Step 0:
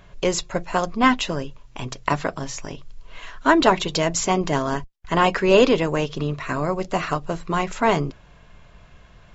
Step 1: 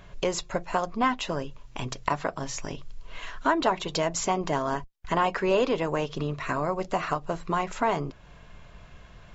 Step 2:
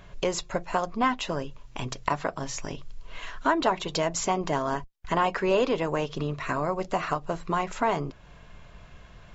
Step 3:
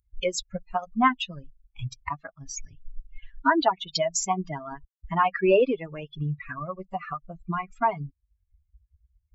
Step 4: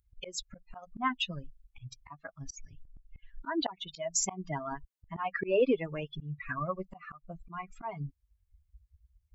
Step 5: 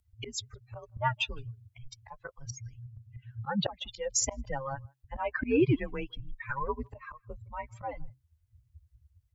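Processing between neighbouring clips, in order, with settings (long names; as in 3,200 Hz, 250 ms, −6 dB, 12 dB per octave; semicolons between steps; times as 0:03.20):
dynamic equaliser 870 Hz, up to +6 dB, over −32 dBFS, Q 0.77; downward compressor 2 to 1, threshold −30 dBFS, peak gain reduction 13.5 dB
no processing that can be heard
spectral dynamics exaggerated over time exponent 3; level +7.5 dB
volume swells 290 ms
frequency shifter −130 Hz; far-end echo of a speakerphone 160 ms, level −29 dB; level +1.5 dB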